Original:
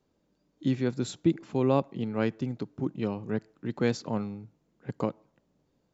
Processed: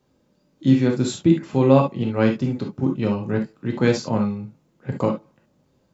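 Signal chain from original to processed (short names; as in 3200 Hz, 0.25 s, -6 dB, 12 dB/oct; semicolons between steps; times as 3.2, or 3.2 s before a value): non-linear reverb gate 90 ms flat, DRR 0.5 dB; gain +6 dB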